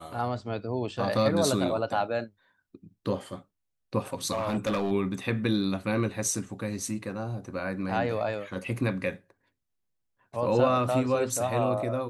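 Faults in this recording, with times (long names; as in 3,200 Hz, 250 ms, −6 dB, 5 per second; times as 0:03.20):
0:04.32–0:04.92: clipping −23.5 dBFS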